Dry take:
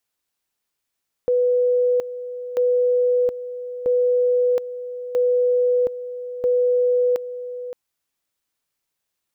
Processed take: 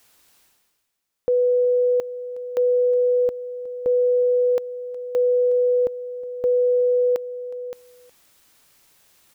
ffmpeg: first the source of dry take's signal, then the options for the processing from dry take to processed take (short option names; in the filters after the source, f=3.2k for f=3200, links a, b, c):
-f lavfi -i "aevalsrc='pow(10,(-15-13*gte(mod(t,1.29),0.72))/20)*sin(2*PI*494*t)':d=6.45:s=44100"
-af "areverse,acompressor=mode=upward:threshold=-39dB:ratio=2.5,areverse,aecho=1:1:365:0.106"